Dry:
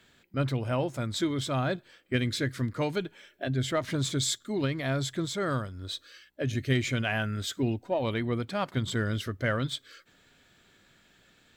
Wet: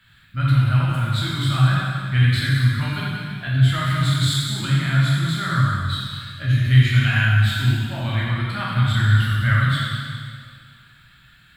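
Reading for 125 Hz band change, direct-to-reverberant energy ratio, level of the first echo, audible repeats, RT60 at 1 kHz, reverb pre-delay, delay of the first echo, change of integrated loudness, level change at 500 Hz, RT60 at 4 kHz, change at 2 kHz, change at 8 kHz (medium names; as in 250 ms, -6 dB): +15.5 dB, -7.5 dB, no echo, no echo, 2.1 s, 6 ms, no echo, +11.0 dB, -7.0 dB, 1.9 s, +11.5 dB, +1.5 dB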